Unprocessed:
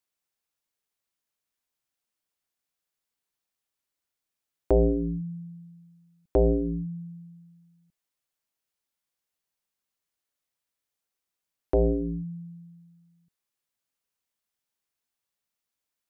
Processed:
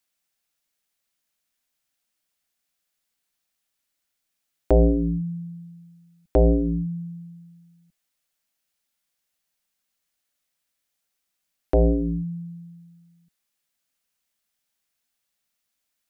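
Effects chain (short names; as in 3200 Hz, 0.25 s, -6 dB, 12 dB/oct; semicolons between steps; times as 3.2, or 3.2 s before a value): fifteen-band EQ 100 Hz -9 dB, 400 Hz -7 dB, 1000 Hz -5 dB; gain +7.5 dB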